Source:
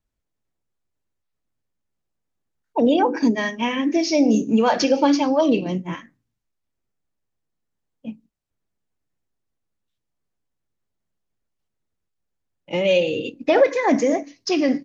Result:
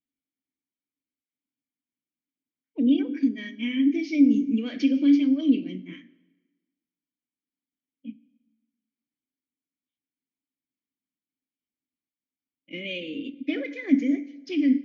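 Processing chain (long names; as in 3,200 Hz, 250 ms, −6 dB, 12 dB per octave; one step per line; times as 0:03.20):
0:03.14–0:03.55: downward compressor, threshold −18 dBFS, peak gain reduction 5.5 dB
formant filter i
dense smooth reverb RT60 1.3 s, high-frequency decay 0.85×, DRR 17 dB
level +3 dB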